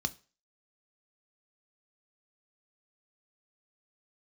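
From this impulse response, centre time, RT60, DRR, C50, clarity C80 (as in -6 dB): 3 ms, 0.35 s, 10.0 dB, 21.5 dB, 27.0 dB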